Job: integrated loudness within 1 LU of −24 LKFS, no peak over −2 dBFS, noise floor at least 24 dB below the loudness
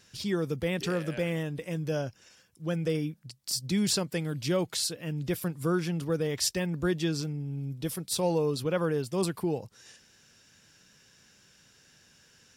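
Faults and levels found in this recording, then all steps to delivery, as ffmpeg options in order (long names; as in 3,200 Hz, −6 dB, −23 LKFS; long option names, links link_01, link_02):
integrated loudness −30.5 LKFS; sample peak −14.5 dBFS; target loudness −24.0 LKFS
→ -af "volume=6.5dB"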